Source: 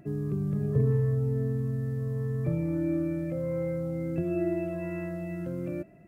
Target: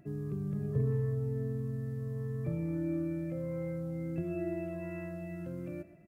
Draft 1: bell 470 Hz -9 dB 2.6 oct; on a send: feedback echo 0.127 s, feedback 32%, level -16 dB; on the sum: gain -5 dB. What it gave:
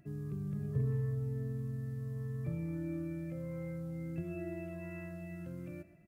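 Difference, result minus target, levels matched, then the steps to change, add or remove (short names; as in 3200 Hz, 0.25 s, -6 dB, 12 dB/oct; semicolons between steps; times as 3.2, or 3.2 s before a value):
500 Hz band -3.5 dB
change: bell 470 Hz -2 dB 2.6 oct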